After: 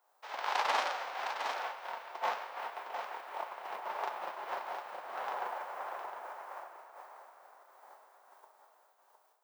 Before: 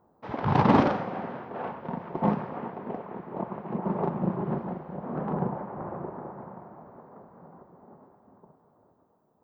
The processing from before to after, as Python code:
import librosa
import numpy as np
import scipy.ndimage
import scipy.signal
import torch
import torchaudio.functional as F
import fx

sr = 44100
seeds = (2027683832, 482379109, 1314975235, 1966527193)

p1 = fx.envelope_flatten(x, sr, power=0.6)
p2 = scipy.signal.sosfilt(scipy.signal.butter(4, 620.0, 'highpass', fs=sr, output='sos'), p1)
p3 = fx.rider(p2, sr, range_db=4, speed_s=0.5)
p4 = p2 + (p3 * 10.0 ** (2.0 / 20.0))
p5 = fx.quant_float(p4, sr, bits=6)
p6 = p5 + fx.echo_single(p5, sr, ms=710, db=-7.5, dry=0)
p7 = fx.am_noise(p6, sr, seeds[0], hz=5.7, depth_pct=65)
y = p7 * 10.0 ** (-8.5 / 20.0)